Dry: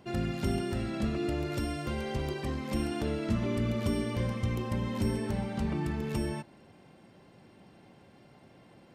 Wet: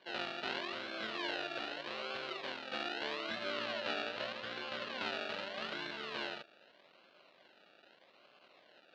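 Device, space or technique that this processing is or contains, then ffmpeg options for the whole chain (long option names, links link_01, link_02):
circuit-bent sampling toy: -filter_complex "[0:a]acrusher=samples=33:mix=1:aa=0.000001:lfo=1:lforange=19.8:lforate=0.81,highpass=590,equalizer=frequency=600:width_type=q:width=4:gain=5,equalizer=frequency=850:width_type=q:width=4:gain=-5,equalizer=frequency=1500:width_type=q:width=4:gain=4,equalizer=frequency=2800:width_type=q:width=4:gain=8,equalizer=frequency=4100:width_type=q:width=4:gain=8,lowpass=frequency=4400:width=0.5412,lowpass=frequency=4400:width=1.3066,asettb=1/sr,asplit=3[link_01][link_02][link_03];[link_01]atrim=end=3.524[link_04];[link_02]atrim=start=3.52:end=5.02,asetpts=PTS-STARTPTS,afade=type=in:duration=0.004:curve=qsin,afade=type=out:start_time=1.496:duration=0.004:curve=qsin,lowpass=9100[link_05];[link_03]atrim=start=5.016[link_06];[link_04][link_05]acrossfade=duration=0.004:curve1=hsin:curve2=qsin[link_07];[link_07][link_06]acrossfade=duration=0.004:curve1=qsin:curve2=hsin,volume=-3dB"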